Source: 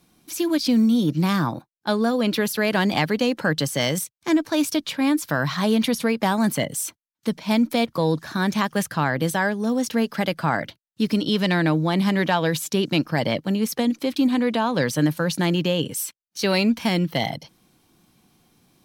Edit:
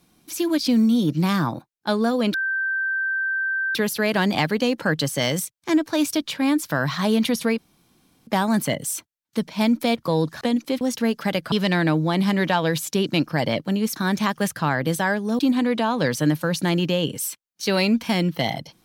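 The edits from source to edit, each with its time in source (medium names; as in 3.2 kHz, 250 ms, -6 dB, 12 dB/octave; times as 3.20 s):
2.34 s: add tone 1.56 kHz -21 dBFS 1.41 s
6.17 s: insert room tone 0.69 s
8.31–9.74 s: swap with 13.75–14.15 s
10.45–11.31 s: delete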